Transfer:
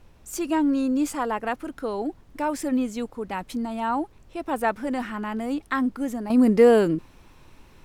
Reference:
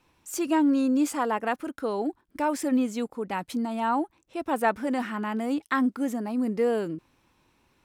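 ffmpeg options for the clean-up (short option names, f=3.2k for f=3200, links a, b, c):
-af "agate=range=-21dB:threshold=-44dB,asetnsamples=n=441:p=0,asendcmd='6.3 volume volume -9.5dB',volume=0dB"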